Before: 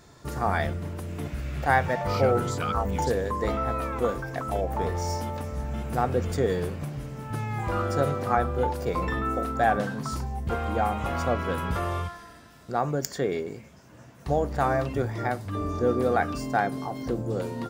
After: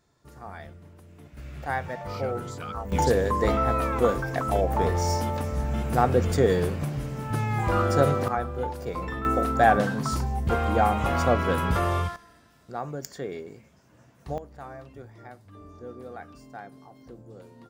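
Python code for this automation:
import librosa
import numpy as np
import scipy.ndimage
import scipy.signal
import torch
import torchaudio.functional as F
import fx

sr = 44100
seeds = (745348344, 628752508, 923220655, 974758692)

y = fx.gain(x, sr, db=fx.steps((0.0, -15.5), (1.37, -7.5), (2.92, 4.0), (8.28, -4.5), (9.25, 4.0), (12.16, -7.0), (14.38, -17.0)))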